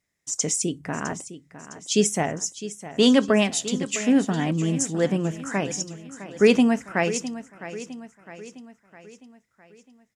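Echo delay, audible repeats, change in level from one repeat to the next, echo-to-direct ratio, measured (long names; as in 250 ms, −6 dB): 658 ms, 4, −6.0 dB, −12.5 dB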